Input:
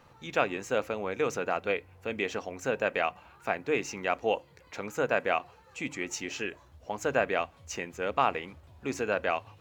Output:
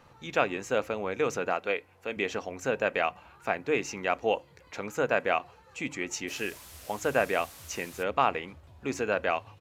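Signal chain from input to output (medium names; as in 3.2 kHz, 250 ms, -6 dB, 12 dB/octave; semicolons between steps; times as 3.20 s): 1.55–2.17 s: high-pass 320 Hz 6 dB/octave; 6.27–8.02 s: added noise white -49 dBFS; resampled via 32 kHz; trim +1 dB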